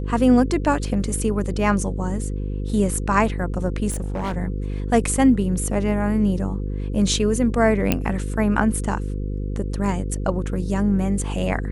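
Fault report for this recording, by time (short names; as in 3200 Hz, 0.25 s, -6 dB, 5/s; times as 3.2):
buzz 50 Hz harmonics 10 -26 dBFS
3.9–4.37 clipped -22 dBFS
7.92 pop -4 dBFS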